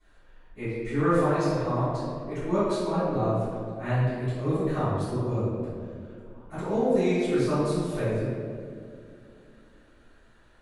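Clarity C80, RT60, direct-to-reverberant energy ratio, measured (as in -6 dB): -0.5 dB, 2.4 s, -18.5 dB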